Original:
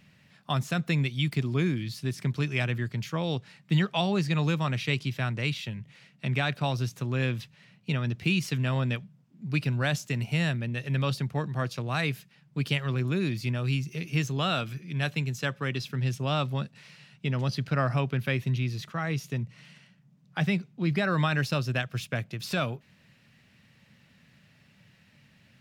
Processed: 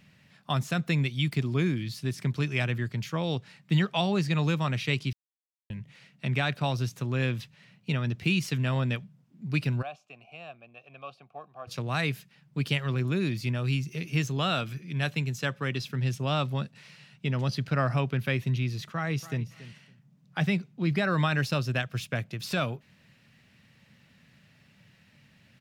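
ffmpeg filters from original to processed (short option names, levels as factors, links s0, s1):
-filter_complex "[0:a]asplit=3[s0][s1][s2];[s0]afade=t=out:st=9.81:d=0.02[s3];[s1]asplit=3[s4][s5][s6];[s4]bandpass=f=730:t=q:w=8,volume=1[s7];[s5]bandpass=f=1090:t=q:w=8,volume=0.501[s8];[s6]bandpass=f=2440:t=q:w=8,volume=0.355[s9];[s7][s8][s9]amix=inputs=3:normalize=0,afade=t=in:st=9.81:d=0.02,afade=t=out:st=11.67:d=0.02[s10];[s2]afade=t=in:st=11.67:d=0.02[s11];[s3][s10][s11]amix=inputs=3:normalize=0,asplit=2[s12][s13];[s13]afade=t=in:st=18.94:d=0.01,afade=t=out:st=19.44:d=0.01,aecho=0:1:280|560:0.16788|0.0251821[s14];[s12][s14]amix=inputs=2:normalize=0,asplit=3[s15][s16][s17];[s15]atrim=end=5.13,asetpts=PTS-STARTPTS,afade=t=out:st=5.126:d=0.004:c=hsin[s18];[s16]atrim=start=5.13:end=5.7,asetpts=PTS-STARTPTS,volume=0[s19];[s17]atrim=start=5.7,asetpts=PTS-STARTPTS,afade=t=in:d=0.004:c=hsin[s20];[s18][s19][s20]concat=n=3:v=0:a=1"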